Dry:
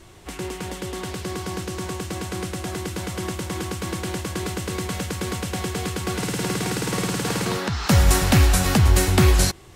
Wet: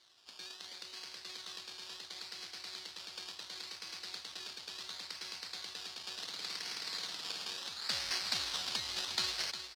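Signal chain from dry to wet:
sample-and-hold swept by an LFO 17×, swing 60% 0.71 Hz
resonant band-pass 4,400 Hz, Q 3.4
single-tap delay 356 ms −9.5 dB
level +1 dB

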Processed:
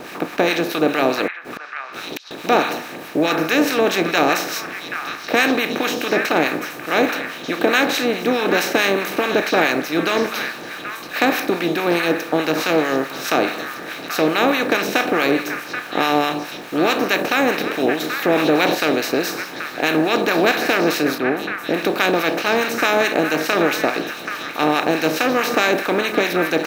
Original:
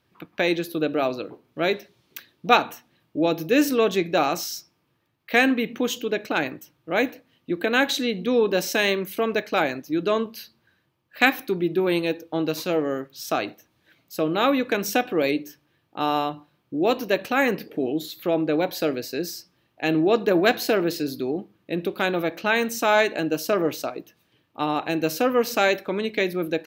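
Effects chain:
compressor on every frequency bin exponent 0.4
two-band tremolo in antiphase 4.7 Hz, depth 70%, crossover 990 Hz
0:01.27–0:02.31: gate with flip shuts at −17 dBFS, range −39 dB
in parallel at −7 dB: bit reduction 6 bits
0:21.18–0:21.74: on the sum: high-frequency loss of the air 380 metres
on a send: echo through a band-pass that steps 781 ms, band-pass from 1,600 Hz, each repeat 1.4 octaves, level −4.5 dB
0:18.30–0:18.75: on the sum: envelope flattener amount 50%
level −2.5 dB

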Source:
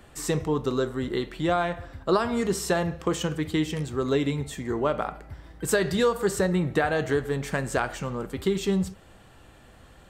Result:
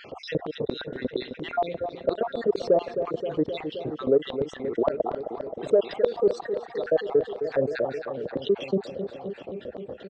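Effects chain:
time-frequency cells dropped at random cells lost 60%
high-pass filter 72 Hz 24 dB per octave
low shelf with overshoot 680 Hz +6.5 dB, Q 1.5
auto-filter band-pass square 4.3 Hz 570–4,000 Hz
in parallel at −7 dB: soft clipping −17 dBFS, distortion −14 dB
on the sum: head-to-tape spacing loss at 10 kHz 42 dB
on a send: repeating echo 263 ms, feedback 60%, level −17.5 dB
on the sum: envelope flattener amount 50%

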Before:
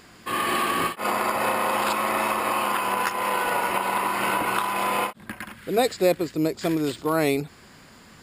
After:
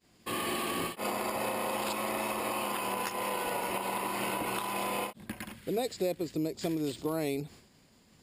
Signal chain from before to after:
downward expander −41 dBFS
parametric band 1,400 Hz −10 dB 1.2 octaves
downward compressor 3 to 1, threshold −29 dBFS, peak gain reduction 9.5 dB
level −1.5 dB

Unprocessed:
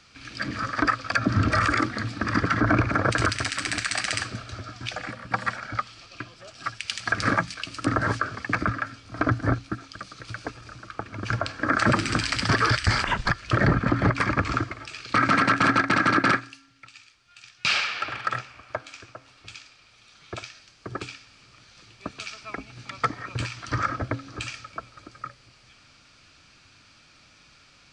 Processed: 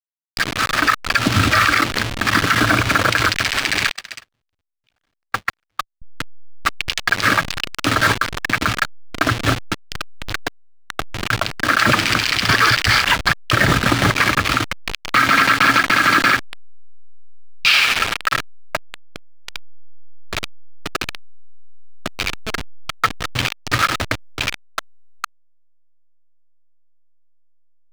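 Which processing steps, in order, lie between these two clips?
hold until the input has moved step −25.5 dBFS
0:03.91–0:06.02: noise gate −23 dBFS, range −49 dB
parametric band 3,100 Hz +13.5 dB 2.7 octaves
boost into a limiter +7 dB
level −2.5 dB

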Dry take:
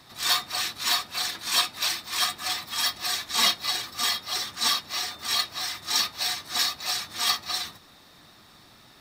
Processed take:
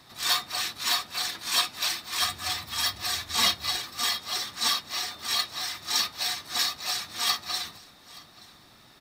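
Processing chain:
0:02.20–0:03.77: parametric band 81 Hz +14 dB 1.1 octaves
single-tap delay 876 ms −21.5 dB
level −1.5 dB

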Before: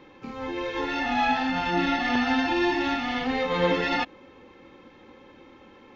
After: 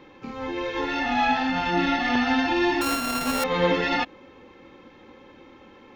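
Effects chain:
0:02.81–0:03.44: samples sorted by size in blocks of 32 samples
level +1.5 dB

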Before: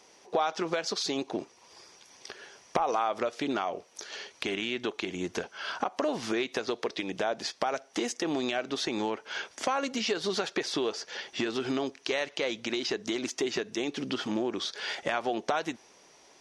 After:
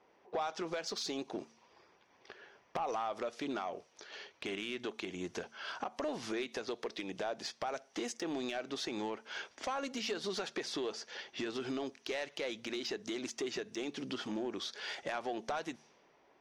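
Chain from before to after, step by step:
low-pass that shuts in the quiet parts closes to 1,700 Hz, open at −30.5 dBFS
hum removal 75.59 Hz, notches 3
soft clipping −21 dBFS, distortion −17 dB
level −6.5 dB

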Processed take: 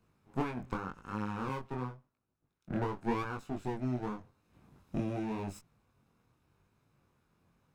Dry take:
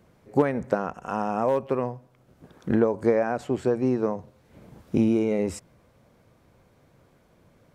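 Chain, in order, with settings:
lower of the sound and its delayed copy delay 0.78 ms
chorus effect 0.88 Hz, delay 19 ms, depth 5.5 ms
0:01.49–0:03.25: multiband upward and downward expander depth 70%
level −8.5 dB

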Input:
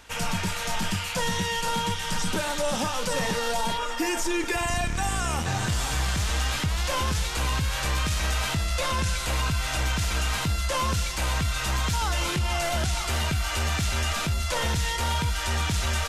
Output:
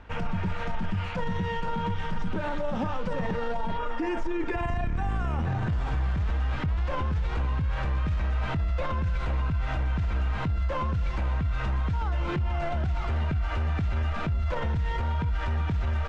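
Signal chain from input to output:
low-pass filter 1,800 Hz 12 dB per octave
low-shelf EQ 300 Hz +8.5 dB
brickwall limiter −21 dBFS, peak gain reduction 10 dB

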